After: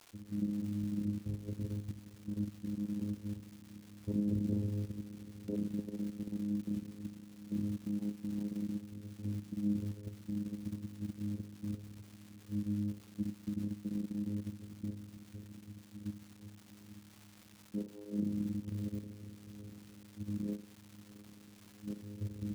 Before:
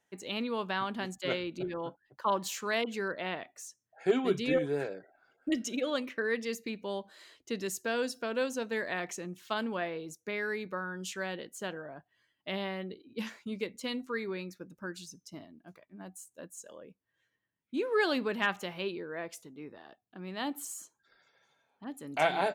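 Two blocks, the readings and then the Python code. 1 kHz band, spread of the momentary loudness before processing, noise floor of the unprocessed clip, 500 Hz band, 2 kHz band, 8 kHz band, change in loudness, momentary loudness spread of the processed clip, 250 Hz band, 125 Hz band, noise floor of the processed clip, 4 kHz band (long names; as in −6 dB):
below −25 dB, 18 LU, −82 dBFS, −18.5 dB, below −25 dB, below −15 dB, −5.0 dB, 18 LU, +1.0 dB, +7.5 dB, −58 dBFS, −20.0 dB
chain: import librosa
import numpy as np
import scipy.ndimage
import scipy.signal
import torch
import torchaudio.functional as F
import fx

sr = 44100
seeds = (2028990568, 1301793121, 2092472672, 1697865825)

p1 = scipy.signal.sosfilt(scipy.signal.cheby2(4, 50, 630.0, 'lowpass', fs=sr, output='sos'), x)
p2 = p1 + fx.echo_diffused(p1, sr, ms=750, feedback_pct=57, wet_db=-14, dry=0)
p3 = fx.rev_schroeder(p2, sr, rt60_s=0.43, comb_ms=31, drr_db=4.5)
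p4 = fx.vocoder(p3, sr, bands=8, carrier='saw', carrier_hz=103.0)
p5 = fx.dmg_crackle(p4, sr, seeds[0], per_s=560.0, level_db=-52.0)
p6 = fx.level_steps(p5, sr, step_db=23)
p7 = p5 + (p6 * 10.0 ** (1.0 / 20.0))
y = p7 * 10.0 ** (1.0 / 20.0)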